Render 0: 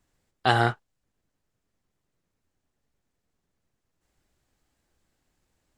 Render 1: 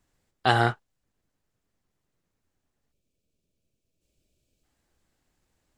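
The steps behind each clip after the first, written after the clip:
gain on a spectral selection 0:02.92–0:04.64, 680–2,200 Hz −15 dB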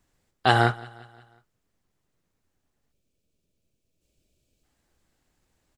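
repeating echo 178 ms, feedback 52%, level −22 dB
level +2 dB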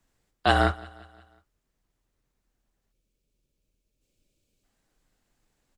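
frequency shifter −40 Hz
level −1.5 dB

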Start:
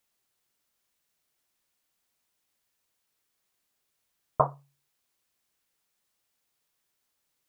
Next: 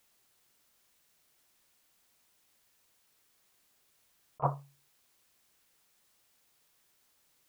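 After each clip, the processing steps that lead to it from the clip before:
compressor whose output falls as the input rises −30 dBFS, ratio −0.5
level +1 dB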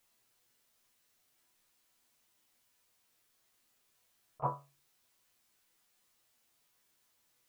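resonators tuned to a chord E2 sus4, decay 0.22 s
level +6.5 dB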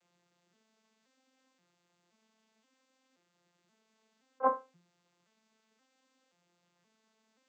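vocoder with an arpeggio as carrier major triad, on F3, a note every 526 ms
level +7.5 dB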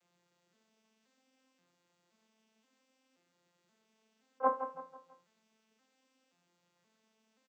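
repeating echo 164 ms, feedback 41%, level −10 dB
level −1.5 dB

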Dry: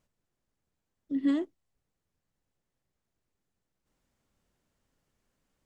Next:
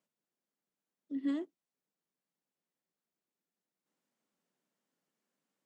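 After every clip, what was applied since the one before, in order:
Butterworth high-pass 170 Hz 36 dB per octave
level −7 dB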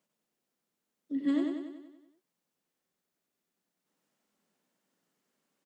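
repeating echo 95 ms, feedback 56%, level −3.5 dB
level +4.5 dB

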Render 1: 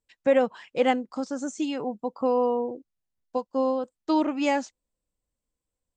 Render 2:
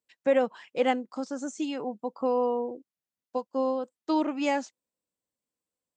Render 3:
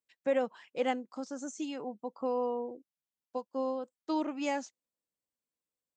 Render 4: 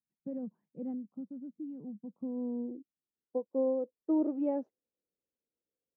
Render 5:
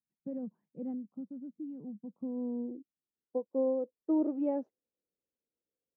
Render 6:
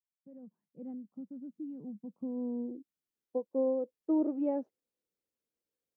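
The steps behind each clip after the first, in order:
high-pass filter 170 Hz 12 dB per octave; level −2.5 dB
dynamic equaliser 6,300 Hz, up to +5 dB, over −57 dBFS, Q 2.9; level −6 dB
low-pass filter sweep 190 Hz → 450 Hz, 0:02.15–0:03.46
no processing that can be heard
fade in at the beginning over 1.56 s

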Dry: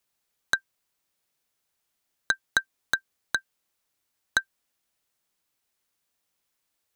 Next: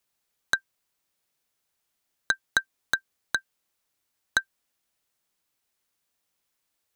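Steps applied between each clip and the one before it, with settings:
no processing that can be heard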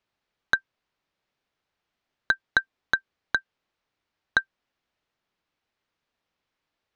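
high-frequency loss of the air 210 metres
level +4 dB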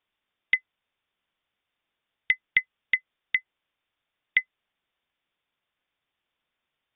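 voice inversion scrambler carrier 3,600 Hz

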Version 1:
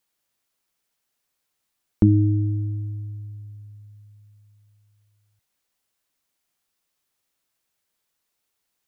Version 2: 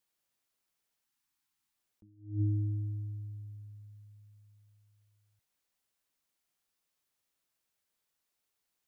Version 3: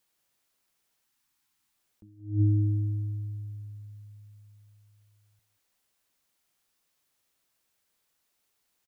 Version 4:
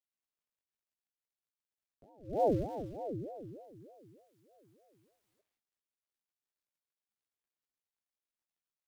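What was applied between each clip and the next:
time-frequency box erased 0:01.05–0:01.73, 380–760 Hz; level that may rise only so fast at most 140 dB per second; level −6 dB
single-tap delay 180 ms −14 dB; level +7 dB
gap after every zero crossing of 0.13 ms; multi-voice chorus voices 4, 0.49 Hz, delay 19 ms, depth 4.6 ms; ring modulator whose carrier an LFO sweeps 420 Hz, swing 50%, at 3.3 Hz

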